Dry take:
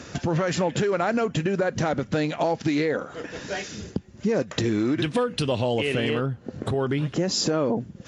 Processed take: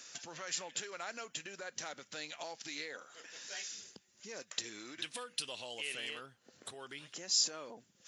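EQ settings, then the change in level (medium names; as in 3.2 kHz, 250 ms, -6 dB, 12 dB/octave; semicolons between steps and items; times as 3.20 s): differentiator; -1.5 dB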